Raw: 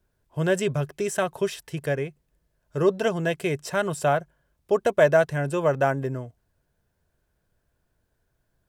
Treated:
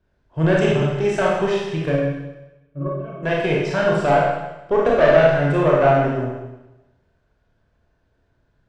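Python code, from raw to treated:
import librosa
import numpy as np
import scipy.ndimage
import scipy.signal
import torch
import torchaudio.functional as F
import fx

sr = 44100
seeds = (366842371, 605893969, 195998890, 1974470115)

y = fx.octave_resonator(x, sr, note='C#', decay_s=0.16, at=(1.91, 3.22), fade=0.02)
y = fx.tube_stage(y, sr, drive_db=16.0, bias=0.45)
y = fx.air_absorb(y, sr, metres=160.0)
y = fx.rev_schroeder(y, sr, rt60_s=1.0, comb_ms=25, drr_db=-4.5)
y = y * librosa.db_to_amplitude(5.0)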